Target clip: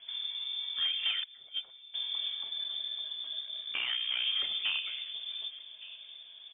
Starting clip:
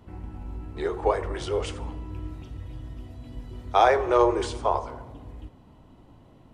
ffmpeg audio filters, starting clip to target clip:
-filter_complex "[0:a]asettb=1/sr,asplit=3[s0][s1][s2];[s0]atrim=end=1.234[s3];[s1]atrim=start=1.23:end=1.94,asetpts=PTS-STARTPTS,afade=t=in:d=0.004:c=qsin,afade=t=out:st=0.706:d=0.004:c=qsin,agate=range=0.0447:threshold=0.0794:ratio=16:detection=peak[s4];[s2]atrim=start=1.936[s5];[s3][s4]acrossfade=d=0.004:c1=hsin:c2=qsin[s6];[s6][s5]acrossfade=d=0.004:c1=qsin:c2=hsin,equalizer=f=700:w=3.1:g=-11.5,bandreject=f=1000:w=7,acrossover=split=81|1700[s7][s8][s9];[s7]acompressor=threshold=0.00708:ratio=4[s10];[s8]acompressor=threshold=0.0355:ratio=4[s11];[s9]acompressor=threshold=0.00251:ratio=4[s12];[s10][s11][s12]amix=inputs=3:normalize=0,volume=26.6,asoftclip=hard,volume=0.0376,asettb=1/sr,asplit=3[s13][s14][s15];[s13]atrim=end=3.394[s16];[s14]atrim=start=3.39:end=4.26,asetpts=PTS-STARTPTS,afade=t=in:d=0.004:c=qsin,afade=t=out:st=0.866:d=0.004:c=qsin,aeval=exprs='val(0)*sin(2*PI*31*n/s)':c=same[s17];[s15]atrim=start=4.256[s18];[s16][s17]acrossfade=d=0.004:c1=hsin:c2=qsin[s19];[s19][s18]acrossfade=d=0.004:c1=qsin:c2=hsin,asplit=2[s20][s21];[s21]adelay=1166,volume=0.141,highshelf=f=4000:g=-26.2[s22];[s20][s22]amix=inputs=2:normalize=0,lowpass=f=3100:t=q:w=0.5098,lowpass=f=3100:t=q:w=0.6013,lowpass=f=3100:t=q:w=0.9,lowpass=f=3100:t=q:w=2.563,afreqshift=-3600,volume=1.26"

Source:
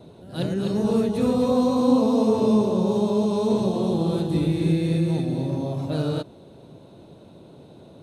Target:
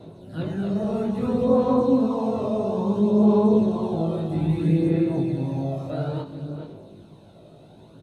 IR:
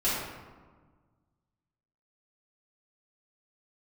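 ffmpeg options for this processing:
-filter_complex "[0:a]asettb=1/sr,asplit=3[s0][s1][s2];[s0]atrim=end=4.494[s3];[s1]atrim=start=4.49:end=4.89,asetpts=PTS-STARTPTS,afade=t=in:d=0.004:c=qsin,afade=t=out:st=0.396:d=0.004:c=qsin,highshelf=f=4800:g=9[s4];[s2]atrim=start=4.886[s5];[s3][s4]acrossfade=d=0.004:c1=hsin:c2=qsin[s6];[s6][s5]acrossfade=d=0.004:c1=qsin:c2=hsin,asplit=2[s7][s8];[s8]adelay=425.7,volume=0.251,highshelf=f=4000:g=-9.58[s9];[s7][s9]amix=inputs=2:normalize=0,aphaser=in_gain=1:out_gain=1:delay=1.6:decay=0.46:speed=0.6:type=sinusoidal,asplit=2[s10][s11];[1:a]atrim=start_sample=2205,afade=t=out:st=0.33:d=0.01,atrim=end_sample=14994[s12];[s11][s12]afir=irnorm=-1:irlink=0,volume=0.1[s13];[s10][s13]amix=inputs=2:normalize=0,acrossover=split=2500[s14][s15];[s15]acompressor=threshold=0.00224:ratio=4:attack=1:release=60[s16];[s14][s16]amix=inputs=2:normalize=0,flanger=delay=18.5:depth=3.9:speed=0.26"

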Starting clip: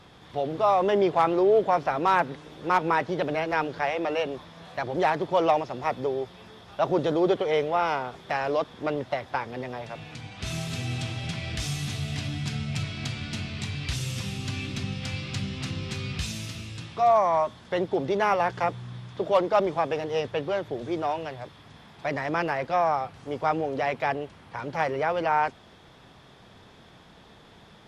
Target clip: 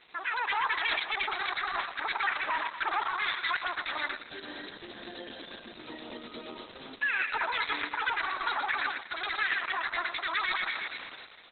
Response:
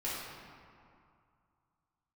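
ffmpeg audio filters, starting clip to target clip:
-filter_complex "[0:a]bandreject=f=1200:w=6.1,alimiter=limit=0.0841:level=0:latency=1:release=50,highpass=f=720:p=1,highshelf=f=5900:g=11,dynaudnorm=f=120:g=17:m=6.31,asplit=2[s0][s1];[s1]adelay=286,lowpass=f=2000:p=1,volume=0.447,asplit=2[s2][s3];[s3]adelay=286,lowpass=f=2000:p=1,volume=0.55,asplit=2[s4][s5];[s5]adelay=286,lowpass=f=2000:p=1,volume=0.55,asplit=2[s6][s7];[s7]adelay=286,lowpass=f=2000:p=1,volume=0.55,asplit=2[s8][s9];[s9]adelay=286,lowpass=f=2000:p=1,volume=0.55,asplit=2[s10][s11];[s11]adelay=286,lowpass=f=2000:p=1,volume=0.55,asplit=2[s12][s13];[s13]adelay=286,lowpass=f=2000:p=1,volume=0.55[s14];[s2][s4][s6][s8][s10][s12][s14]amix=inputs=7:normalize=0[s15];[s0][s15]amix=inputs=2:normalize=0,asetrate=106722,aresample=44100,acrusher=bits=8:mix=0:aa=0.000001,equalizer=f=9800:w=0.36:g=9,areverse,acompressor=threshold=0.0562:ratio=5,areverse,volume=11.9,asoftclip=hard,volume=0.0841" -ar 48000 -c:a libopus -b:a 8k

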